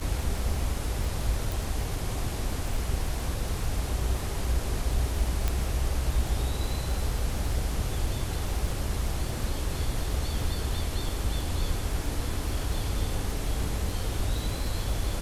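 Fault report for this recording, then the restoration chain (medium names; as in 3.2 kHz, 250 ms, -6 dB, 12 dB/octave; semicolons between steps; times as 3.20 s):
crackle 28 per s -32 dBFS
1.52 s: pop
5.48 s: pop -12 dBFS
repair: de-click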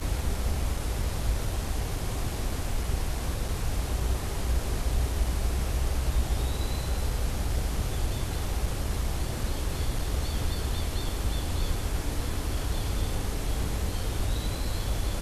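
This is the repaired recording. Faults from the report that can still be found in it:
5.48 s: pop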